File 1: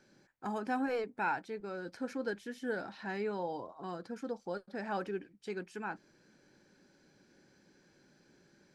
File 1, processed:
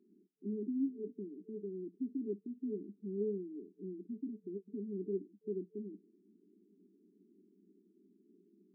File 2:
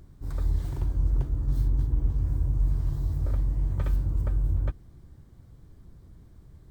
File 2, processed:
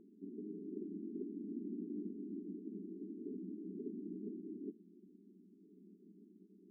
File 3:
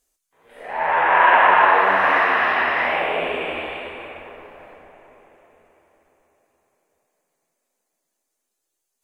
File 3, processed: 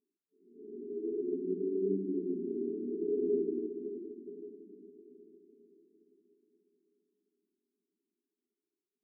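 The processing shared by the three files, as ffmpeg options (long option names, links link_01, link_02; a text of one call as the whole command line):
ffmpeg -i in.wav -af "afftfilt=real='re*between(b*sr/4096,180,440)':imag='im*between(b*sr/4096,180,440)':win_size=4096:overlap=0.75,volume=1.5dB" out.wav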